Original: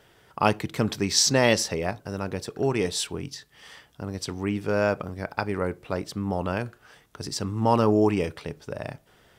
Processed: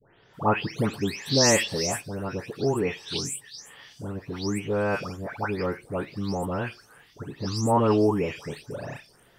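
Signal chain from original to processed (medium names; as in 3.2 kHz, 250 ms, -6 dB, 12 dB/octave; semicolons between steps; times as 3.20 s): delay that grows with frequency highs late, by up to 338 ms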